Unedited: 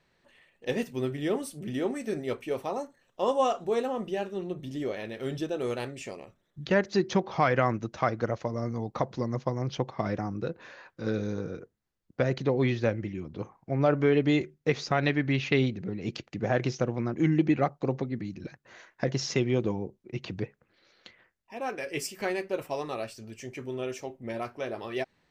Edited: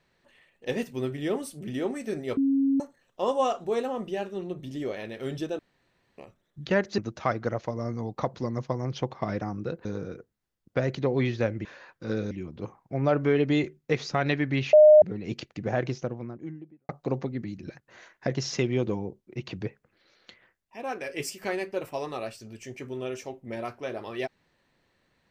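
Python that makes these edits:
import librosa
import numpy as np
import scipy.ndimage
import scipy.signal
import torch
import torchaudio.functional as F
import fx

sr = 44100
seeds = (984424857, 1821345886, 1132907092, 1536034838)

y = fx.studio_fade_out(x, sr, start_s=16.3, length_s=1.36)
y = fx.edit(y, sr, fx.bleep(start_s=2.37, length_s=0.43, hz=273.0, db=-20.0),
    fx.room_tone_fill(start_s=5.59, length_s=0.59),
    fx.cut(start_s=6.98, length_s=0.77),
    fx.move(start_s=10.62, length_s=0.66, to_s=13.08),
    fx.bleep(start_s=15.5, length_s=0.29, hz=610.0, db=-10.0), tone=tone)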